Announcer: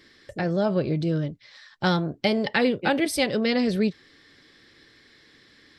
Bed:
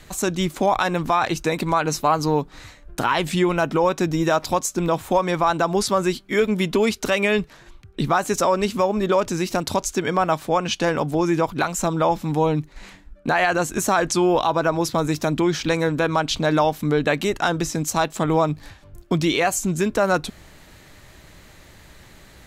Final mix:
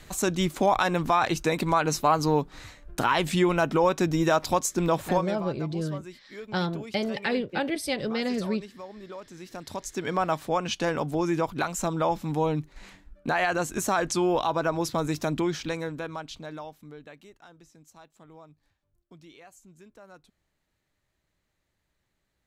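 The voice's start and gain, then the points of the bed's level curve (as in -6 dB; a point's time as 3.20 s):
4.70 s, -5.5 dB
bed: 5.10 s -3 dB
5.51 s -22 dB
9.30 s -22 dB
10.14 s -6 dB
15.38 s -6 dB
17.42 s -31 dB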